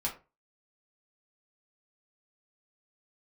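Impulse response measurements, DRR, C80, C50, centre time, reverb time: −3.5 dB, 17.0 dB, 10.5 dB, 18 ms, 0.30 s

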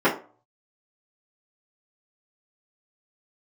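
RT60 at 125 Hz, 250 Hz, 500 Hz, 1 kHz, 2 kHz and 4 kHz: 0.55, 0.40, 0.40, 0.40, 0.30, 0.25 seconds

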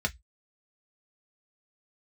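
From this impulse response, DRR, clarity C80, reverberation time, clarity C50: 3.0 dB, 39.5 dB, 0.10 s, 26.5 dB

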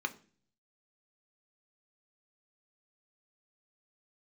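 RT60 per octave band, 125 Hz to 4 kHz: 0.85, 0.70, 0.50, 0.35, 0.40, 0.45 seconds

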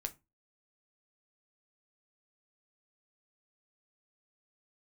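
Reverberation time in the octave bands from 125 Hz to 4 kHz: 0.35, 0.30, 0.25, 0.25, 0.20, 0.15 seconds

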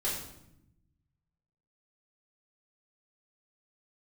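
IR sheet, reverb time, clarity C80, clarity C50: 0.80 s, 6.5 dB, 3.0 dB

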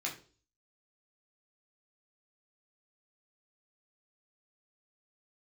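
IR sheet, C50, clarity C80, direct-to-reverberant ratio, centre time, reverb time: 10.5 dB, 15.5 dB, −3.0 dB, 20 ms, 0.40 s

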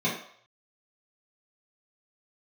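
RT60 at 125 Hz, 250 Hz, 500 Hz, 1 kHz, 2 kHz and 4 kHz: 0.40, 0.35, 0.60, 0.65, 0.60, 0.60 seconds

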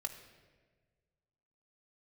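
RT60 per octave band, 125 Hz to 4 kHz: 2.1, 1.7, 1.7, 1.3, 1.3, 1.0 seconds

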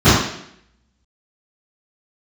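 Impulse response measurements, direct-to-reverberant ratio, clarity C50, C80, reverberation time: −20.0 dB, −0.5 dB, 4.0 dB, 0.70 s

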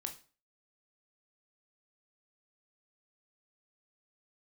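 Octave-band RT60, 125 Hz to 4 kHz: 0.40, 0.40, 0.40, 0.40, 0.35, 0.35 seconds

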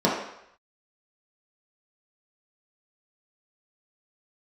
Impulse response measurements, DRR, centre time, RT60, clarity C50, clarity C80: −6.5 dB, 49 ms, 0.75 s, 2.5 dB, 6.0 dB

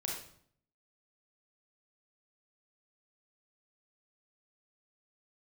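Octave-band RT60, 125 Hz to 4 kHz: 0.85, 0.75, 0.60, 0.60, 0.50, 0.50 seconds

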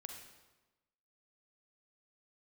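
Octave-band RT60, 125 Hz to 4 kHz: 1.2, 1.2, 1.1, 1.1, 1.0, 0.90 seconds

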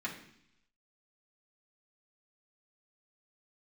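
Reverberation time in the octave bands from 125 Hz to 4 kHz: 0.90, 0.85, 0.70, 0.70, 0.85, 0.95 seconds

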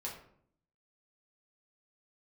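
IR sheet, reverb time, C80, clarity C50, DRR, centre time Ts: 0.65 s, 9.5 dB, 6.5 dB, −4.0 dB, 30 ms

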